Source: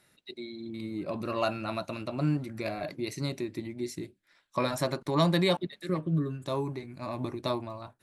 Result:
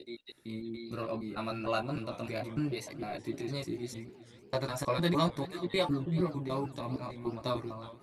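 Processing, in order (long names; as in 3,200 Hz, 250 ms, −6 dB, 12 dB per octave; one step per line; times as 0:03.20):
slices reordered back to front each 151 ms, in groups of 3
multi-voice chorus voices 6, 0.62 Hz, delay 16 ms, depth 2.2 ms
feedback echo with a swinging delay time 376 ms, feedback 60%, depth 153 cents, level −17.5 dB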